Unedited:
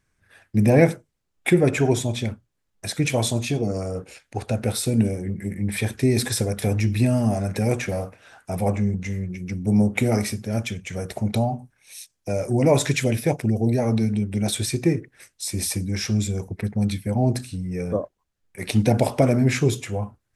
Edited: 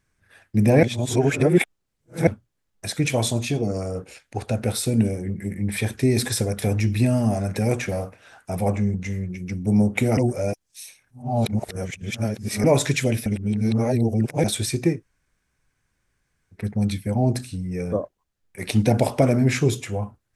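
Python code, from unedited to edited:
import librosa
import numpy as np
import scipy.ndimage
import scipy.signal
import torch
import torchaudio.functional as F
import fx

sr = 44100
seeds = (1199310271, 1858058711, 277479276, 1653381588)

y = fx.edit(x, sr, fx.reverse_span(start_s=0.83, length_s=1.44),
    fx.reverse_span(start_s=10.17, length_s=2.47),
    fx.reverse_span(start_s=13.26, length_s=1.18),
    fx.room_tone_fill(start_s=14.95, length_s=1.64, crossfade_s=0.16), tone=tone)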